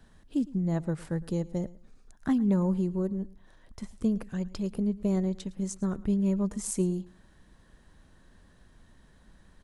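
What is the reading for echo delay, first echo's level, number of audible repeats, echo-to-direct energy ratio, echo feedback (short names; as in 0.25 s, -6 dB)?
0.11 s, -20.5 dB, 2, -20.5 dB, 21%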